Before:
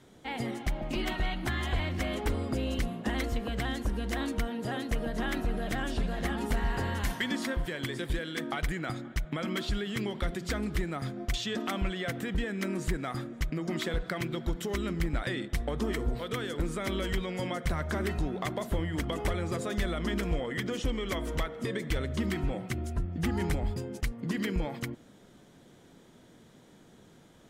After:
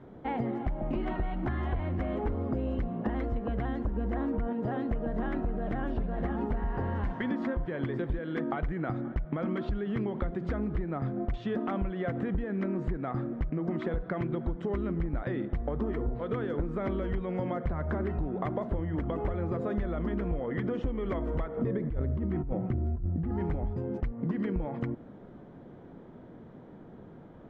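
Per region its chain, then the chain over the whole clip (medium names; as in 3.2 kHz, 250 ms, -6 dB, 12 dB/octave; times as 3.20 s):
3.96–4.53 s: peaking EQ 4.5 kHz -6 dB 1.7 oct + level flattener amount 50%
21.57–23.31 s: tilt EQ -2 dB/octave + compressor with a negative ratio -28 dBFS
whole clip: low-pass 1.1 kHz 12 dB/octave; compression, threshold -36 dBFS; trim +8 dB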